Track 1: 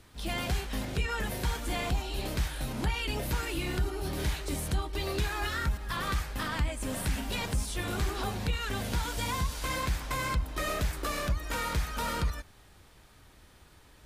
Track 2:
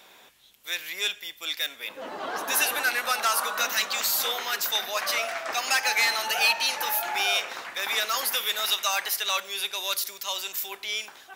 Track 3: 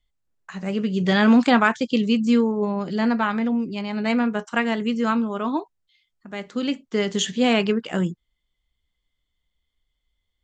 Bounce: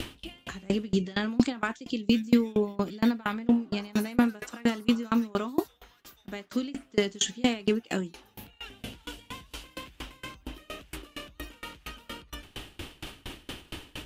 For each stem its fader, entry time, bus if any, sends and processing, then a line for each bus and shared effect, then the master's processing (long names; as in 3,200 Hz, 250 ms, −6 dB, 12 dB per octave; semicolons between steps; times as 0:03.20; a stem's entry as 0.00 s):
−2.5 dB, 0.00 s, bus A, no send, parametric band 2,900 Hz +14.5 dB 0.48 octaves; brickwall limiter −23.5 dBFS, peak gain reduction 8 dB; envelope flattener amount 100%; automatic ducking −22 dB, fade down 1.45 s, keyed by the third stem
0:04.98 −7 dB → 0:05.58 −19 dB, 1.45 s, bus A, no send, no processing
0.0 dB, 0.00 s, no bus, no send, high-shelf EQ 2,900 Hz +11 dB; brickwall limiter −13.5 dBFS, peak gain reduction 11.5 dB
bus A: 0.0 dB, downward compressor 2.5 to 1, threshold −36 dBFS, peak gain reduction 7 dB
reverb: not used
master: parametric band 300 Hz +9 dB 0.94 octaves; tremolo with a ramp in dB decaying 4.3 Hz, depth 29 dB